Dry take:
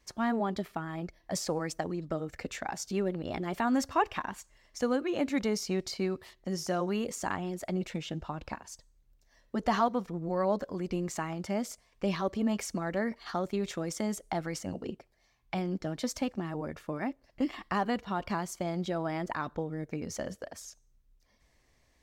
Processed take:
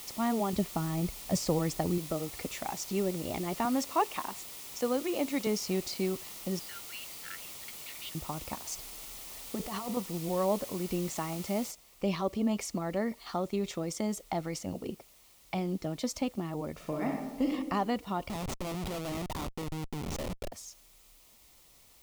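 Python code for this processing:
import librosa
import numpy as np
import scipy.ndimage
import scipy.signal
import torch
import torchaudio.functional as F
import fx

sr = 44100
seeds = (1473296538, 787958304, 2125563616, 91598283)

y = fx.low_shelf(x, sr, hz=230.0, db=11.5, at=(0.53, 1.98))
y = fx.highpass(y, sr, hz=250.0, slope=12, at=(3.65, 5.47))
y = fx.brickwall_bandpass(y, sr, low_hz=1300.0, high_hz=5000.0, at=(6.59, 8.15))
y = fx.over_compress(y, sr, threshold_db=-36.0, ratio=-1.0, at=(8.66, 9.97))
y = fx.noise_floor_step(y, sr, seeds[0], at_s=11.71, before_db=-45, after_db=-60, tilt_db=0.0)
y = fx.reverb_throw(y, sr, start_s=16.73, length_s=0.77, rt60_s=1.1, drr_db=0.0)
y = fx.schmitt(y, sr, flips_db=-37.0, at=(18.29, 20.52))
y = fx.peak_eq(y, sr, hz=1600.0, db=-11.5, octaves=0.29)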